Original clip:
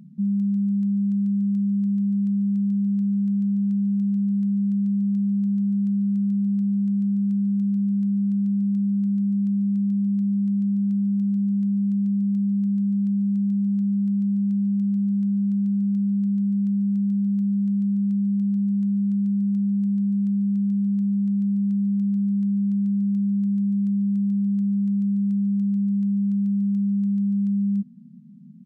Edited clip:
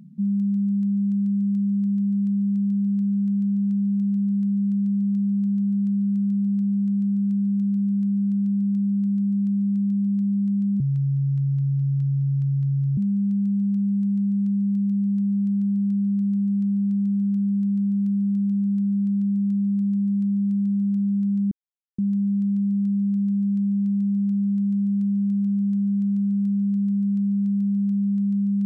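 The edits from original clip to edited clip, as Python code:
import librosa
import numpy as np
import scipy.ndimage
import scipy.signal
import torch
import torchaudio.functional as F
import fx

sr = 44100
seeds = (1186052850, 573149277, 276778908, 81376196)

y = fx.edit(x, sr, fx.speed_span(start_s=10.8, length_s=1.5, speed=0.69),
    fx.insert_silence(at_s=20.84, length_s=0.47), tone=tone)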